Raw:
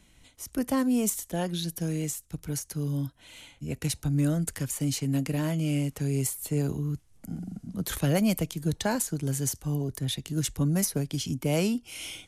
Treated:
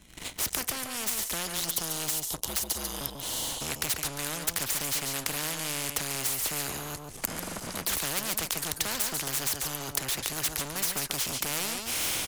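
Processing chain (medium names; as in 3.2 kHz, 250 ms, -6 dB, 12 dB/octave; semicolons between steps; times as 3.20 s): recorder AGC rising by 20 dB/s; 2.46–3.01 s: frequency shift -84 Hz; 1.42–3.64 s: spectral selection erased 1.1–2.8 kHz; waveshaping leveller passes 3; 0.61–1.32 s: feedback comb 95 Hz, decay 1.6 s, harmonics odd, mix 40%; delay 142 ms -12.5 dB; spectrum-flattening compressor 4:1; trim +3.5 dB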